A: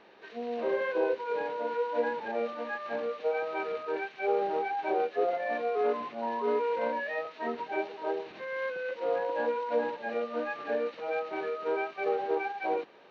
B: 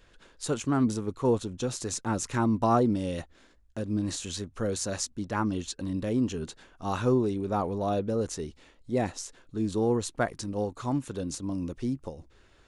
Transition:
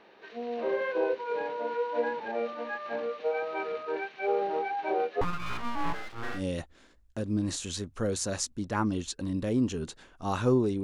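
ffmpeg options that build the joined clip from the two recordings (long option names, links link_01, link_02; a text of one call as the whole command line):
ffmpeg -i cue0.wav -i cue1.wav -filter_complex "[0:a]asettb=1/sr,asplit=3[link_01][link_02][link_03];[link_01]atrim=end=5.214[link_04];[link_02]atrim=start=5.21:end=6.43,asetpts=PTS-STARTPTS,afade=type=in:duration=0.004:curve=qsin,afade=type=out:start_time=1.216:duration=0.004:curve=qsin,aeval=exprs='abs(val(0))':channel_layout=same[link_05];[link_03]atrim=start=6.426[link_06];[link_04][link_05]acrossfade=duration=0.004:curve1=hsin:curve2=qsin[link_07];[link_07][link_06]acrossfade=duration=0.004:curve1=qsin:curve2=hsin,apad=whole_dur=10.83,atrim=end=10.83,atrim=end=6.43,asetpts=PTS-STARTPTS[link_08];[1:a]atrim=start=2.93:end=7.43,asetpts=PTS-STARTPTS[link_09];[link_08][link_09]acrossfade=duration=0.1:curve1=tri:curve2=tri" out.wav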